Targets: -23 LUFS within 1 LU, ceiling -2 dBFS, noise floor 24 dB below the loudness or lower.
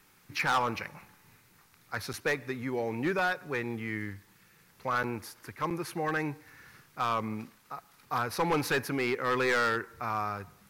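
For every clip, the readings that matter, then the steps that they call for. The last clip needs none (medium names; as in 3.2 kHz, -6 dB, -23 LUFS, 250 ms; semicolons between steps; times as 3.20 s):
clipped samples 1.3%; clipping level -22.5 dBFS; dropouts 3; longest dropout 7.7 ms; loudness -31.5 LUFS; peak level -22.5 dBFS; loudness target -23.0 LUFS
-> clip repair -22.5 dBFS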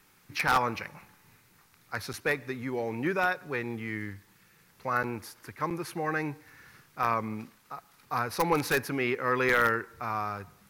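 clipped samples 0.0%; dropouts 3; longest dropout 7.7 ms
-> interpolate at 2.13/5.03/5.70 s, 7.7 ms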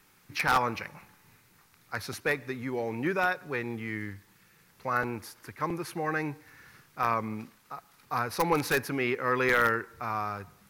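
dropouts 0; loudness -30.0 LUFS; peak level -13.5 dBFS; loudness target -23.0 LUFS
-> trim +7 dB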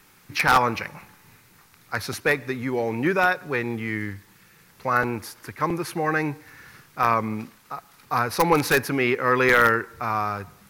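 loudness -23.0 LUFS; peak level -6.5 dBFS; noise floor -56 dBFS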